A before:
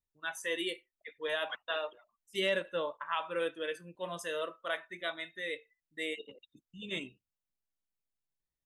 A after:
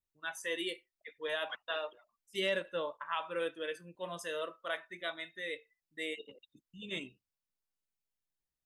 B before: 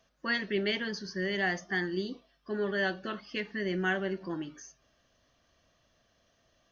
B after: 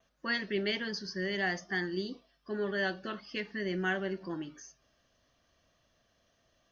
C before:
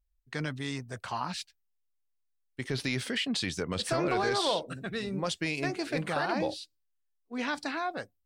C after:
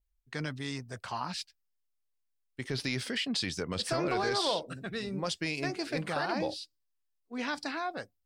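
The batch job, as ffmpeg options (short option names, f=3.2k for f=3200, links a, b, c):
-af "adynamicequalizer=threshold=0.00141:dfrequency=5000:dqfactor=4.8:tfrequency=5000:tqfactor=4.8:attack=5:release=100:ratio=0.375:range=3:mode=boostabove:tftype=bell,volume=-2dB"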